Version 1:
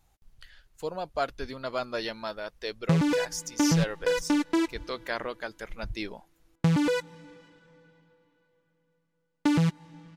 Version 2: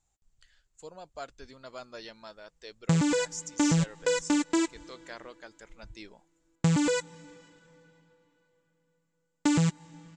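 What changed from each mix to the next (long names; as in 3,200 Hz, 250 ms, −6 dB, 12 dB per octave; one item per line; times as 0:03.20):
background +11.0 dB
master: add transistor ladder low-pass 7,900 Hz, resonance 75%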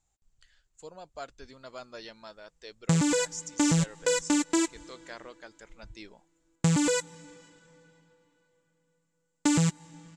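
background: remove high-frequency loss of the air 62 metres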